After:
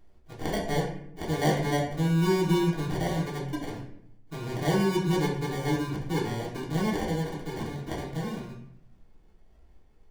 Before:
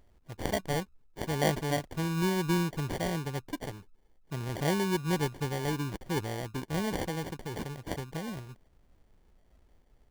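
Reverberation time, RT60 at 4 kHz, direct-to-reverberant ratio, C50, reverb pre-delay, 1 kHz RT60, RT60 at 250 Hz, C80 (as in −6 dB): 0.70 s, 0.50 s, −5.0 dB, 6.0 dB, 3 ms, 0.70 s, 1.0 s, 9.0 dB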